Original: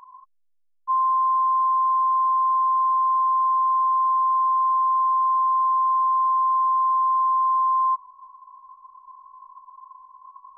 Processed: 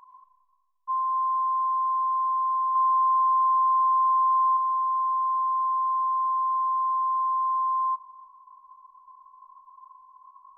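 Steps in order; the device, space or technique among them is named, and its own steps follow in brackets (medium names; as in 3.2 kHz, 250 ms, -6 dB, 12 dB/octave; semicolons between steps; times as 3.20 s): 2.75–4.57 s: dynamic bell 1.1 kHz, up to +4 dB, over -32 dBFS, Q 1.1; compressed reverb return (on a send at -10.5 dB: reverberation RT60 1.5 s, pre-delay 94 ms + compression, threshold -32 dBFS, peak gain reduction 14.5 dB); on the sum: trim -5.5 dB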